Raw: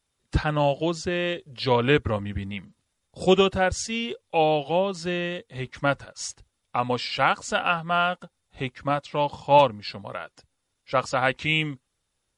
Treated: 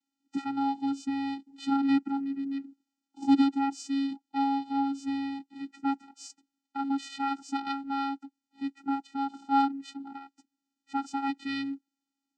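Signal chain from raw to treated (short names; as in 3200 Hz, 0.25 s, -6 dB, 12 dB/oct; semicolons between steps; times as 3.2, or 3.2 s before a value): vocoder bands 8, square 275 Hz; tone controls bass +2 dB, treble +7 dB; gain -5.5 dB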